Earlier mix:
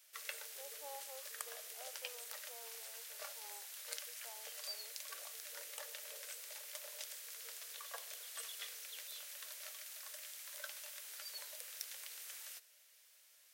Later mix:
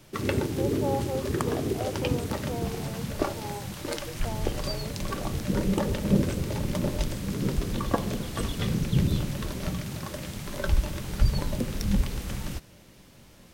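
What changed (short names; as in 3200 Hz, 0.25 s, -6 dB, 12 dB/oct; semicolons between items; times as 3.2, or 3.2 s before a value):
background: remove rippled Chebyshev high-pass 440 Hz, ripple 6 dB; master: remove differentiator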